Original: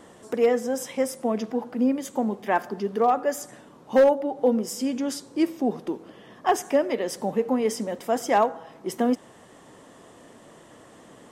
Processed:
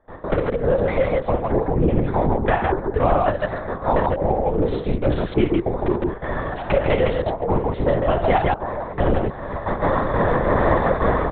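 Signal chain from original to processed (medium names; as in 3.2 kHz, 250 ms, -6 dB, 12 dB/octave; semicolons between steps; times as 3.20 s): local Wiener filter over 15 samples; recorder AGC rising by 32 dB/s; high-pass 570 Hz 6 dB/octave; in parallel at +1.5 dB: peak limiter -20.5 dBFS, peak gain reduction 10.5 dB; on the sum: compression, threshold -24 dBFS, peak gain reduction 11 dB; trance gate ".x.xx..xxx.xxxx" 188 bpm -24 dB; on a send: loudspeakers at several distances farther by 11 m -7 dB, 23 m -7 dB, 53 m -2 dB; on the sum: LPC vocoder at 8 kHz whisper; trim +8 dB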